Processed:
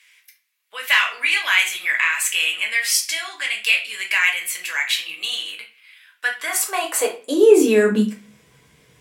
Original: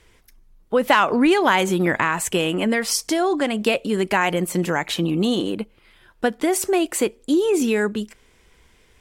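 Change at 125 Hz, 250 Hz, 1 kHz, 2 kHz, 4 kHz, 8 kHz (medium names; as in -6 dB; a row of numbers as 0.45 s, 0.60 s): no reading, -4.5 dB, -7.5 dB, +6.0 dB, +5.5 dB, +4.0 dB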